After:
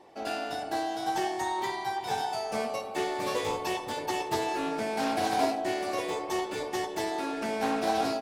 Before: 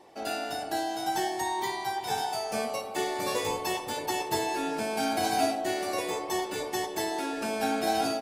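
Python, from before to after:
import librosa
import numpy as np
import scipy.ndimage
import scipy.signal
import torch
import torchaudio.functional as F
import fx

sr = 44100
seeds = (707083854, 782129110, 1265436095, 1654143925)

y = fx.high_shelf(x, sr, hz=5700.0, db=-7.0)
y = fx.doppler_dist(y, sr, depth_ms=0.2)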